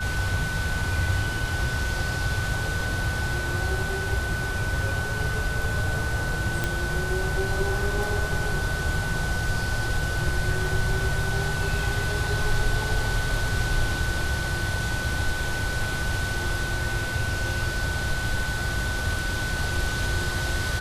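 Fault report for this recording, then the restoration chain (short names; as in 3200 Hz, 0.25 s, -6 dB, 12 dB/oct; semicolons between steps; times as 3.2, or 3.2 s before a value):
tone 1500 Hz -30 dBFS
6.64 pop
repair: de-click; notch 1500 Hz, Q 30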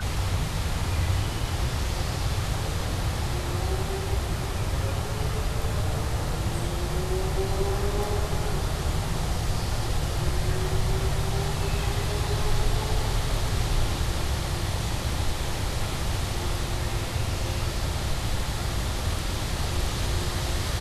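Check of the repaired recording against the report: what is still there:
6.64 pop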